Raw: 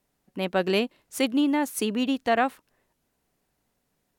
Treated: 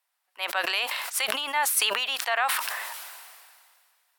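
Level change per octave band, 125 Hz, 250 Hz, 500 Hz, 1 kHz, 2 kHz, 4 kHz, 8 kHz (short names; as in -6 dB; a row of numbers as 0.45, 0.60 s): n/a, -25.0 dB, -9.0 dB, +1.0 dB, +5.5 dB, +7.0 dB, +9.5 dB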